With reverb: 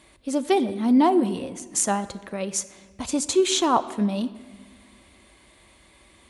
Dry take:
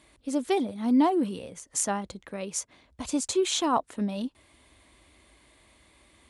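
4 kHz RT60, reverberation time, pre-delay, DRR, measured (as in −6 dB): 1.1 s, 1.5 s, 5 ms, 11.0 dB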